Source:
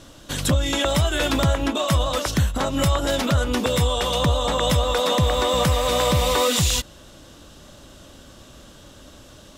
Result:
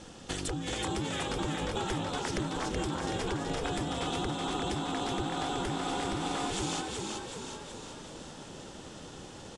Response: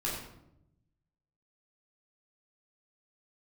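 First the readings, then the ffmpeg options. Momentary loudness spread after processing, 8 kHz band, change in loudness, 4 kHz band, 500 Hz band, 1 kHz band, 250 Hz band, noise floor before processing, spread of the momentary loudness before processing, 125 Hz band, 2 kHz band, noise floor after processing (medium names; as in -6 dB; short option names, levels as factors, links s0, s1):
12 LU, -12.0 dB, -13.0 dB, -13.0 dB, -13.5 dB, -9.5 dB, -8.5 dB, -46 dBFS, 4 LU, -15.5 dB, -10.5 dB, -47 dBFS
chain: -filter_complex "[0:a]aeval=exprs='val(0)*sin(2*PI*220*n/s)':c=same,acompressor=threshold=0.0282:ratio=12,aresample=22050,aresample=44100,bandreject=f=3900:w=14,asplit=2[s0][s1];[s1]asplit=8[s2][s3][s4][s5][s6][s7][s8][s9];[s2]adelay=376,afreqshift=45,volume=0.668[s10];[s3]adelay=752,afreqshift=90,volume=0.38[s11];[s4]adelay=1128,afreqshift=135,volume=0.216[s12];[s5]adelay=1504,afreqshift=180,volume=0.124[s13];[s6]adelay=1880,afreqshift=225,volume=0.0708[s14];[s7]adelay=2256,afreqshift=270,volume=0.0403[s15];[s8]adelay=2632,afreqshift=315,volume=0.0229[s16];[s9]adelay=3008,afreqshift=360,volume=0.013[s17];[s10][s11][s12][s13][s14][s15][s16][s17]amix=inputs=8:normalize=0[s18];[s0][s18]amix=inputs=2:normalize=0"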